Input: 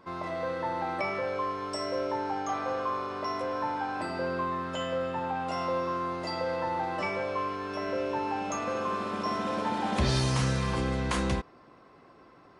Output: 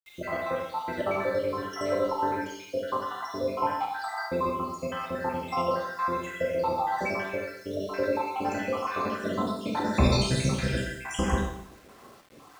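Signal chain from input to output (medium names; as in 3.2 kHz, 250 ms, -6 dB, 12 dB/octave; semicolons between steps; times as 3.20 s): random holes in the spectrogram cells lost 73%; Schroeder reverb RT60 0.77 s, combs from 28 ms, DRR -0.5 dB; word length cut 10-bit, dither none; trim +4.5 dB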